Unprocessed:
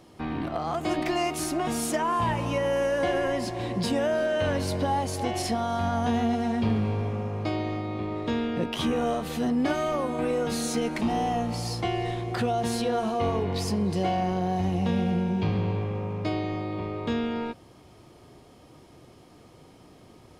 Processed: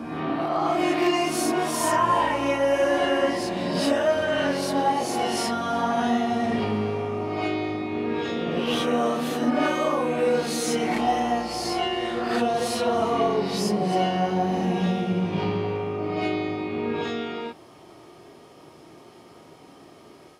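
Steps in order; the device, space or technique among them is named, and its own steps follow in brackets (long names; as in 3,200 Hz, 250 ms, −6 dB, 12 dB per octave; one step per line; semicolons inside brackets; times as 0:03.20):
ghost voice (reversed playback; convolution reverb RT60 1.2 s, pre-delay 15 ms, DRR −6.5 dB; reversed playback; high-pass filter 380 Hz 6 dB per octave)
level −1 dB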